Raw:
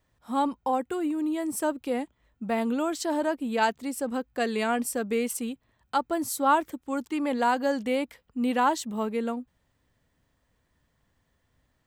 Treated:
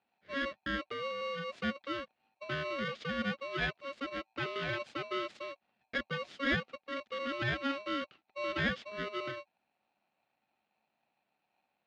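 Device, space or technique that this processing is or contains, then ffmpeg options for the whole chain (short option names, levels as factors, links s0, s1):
ring modulator pedal into a guitar cabinet: -af "aeval=exprs='val(0)*sgn(sin(2*PI*830*n/s))':c=same,highpass=84,equalizer=f=100:t=q:w=4:g=-8,equalizer=f=220:t=q:w=4:g=6,equalizer=f=990:t=q:w=4:g=-9,lowpass=f=3800:w=0.5412,lowpass=f=3800:w=1.3066,volume=0.398"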